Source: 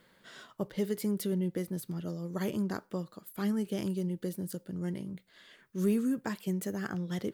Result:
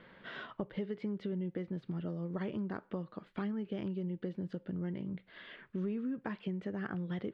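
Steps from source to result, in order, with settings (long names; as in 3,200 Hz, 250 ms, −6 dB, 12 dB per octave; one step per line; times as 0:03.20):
low-pass filter 3,100 Hz 24 dB per octave
downward compressor 4 to 1, threshold −44 dBFS, peak gain reduction 17 dB
level +7 dB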